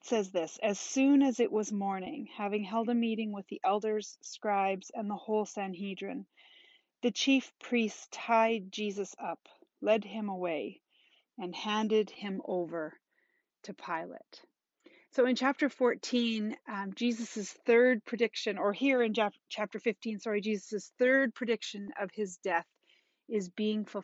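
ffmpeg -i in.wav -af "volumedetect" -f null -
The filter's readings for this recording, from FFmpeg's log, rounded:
mean_volume: -32.6 dB
max_volume: -14.2 dB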